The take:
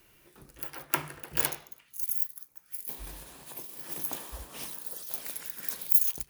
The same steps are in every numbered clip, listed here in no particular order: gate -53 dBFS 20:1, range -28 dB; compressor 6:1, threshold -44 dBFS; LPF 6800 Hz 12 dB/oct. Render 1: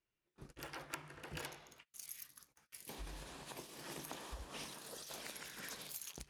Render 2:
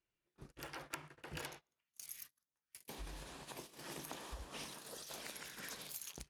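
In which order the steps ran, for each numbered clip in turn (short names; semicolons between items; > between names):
gate > LPF > compressor; LPF > compressor > gate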